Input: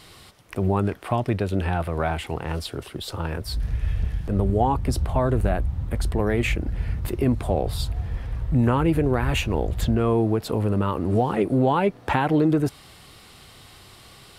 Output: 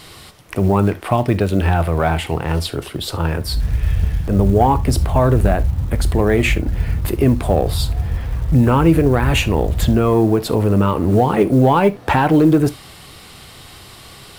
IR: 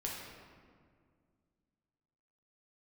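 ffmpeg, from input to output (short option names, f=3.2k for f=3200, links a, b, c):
-filter_complex "[0:a]acontrast=79,acrusher=bits=9:mode=log:mix=0:aa=0.000001,asplit=2[a][b];[1:a]atrim=start_sample=2205,atrim=end_sample=3528,highshelf=f=8.8k:g=8.5[c];[b][c]afir=irnorm=-1:irlink=0,volume=-9dB[d];[a][d]amix=inputs=2:normalize=0,volume=-1dB"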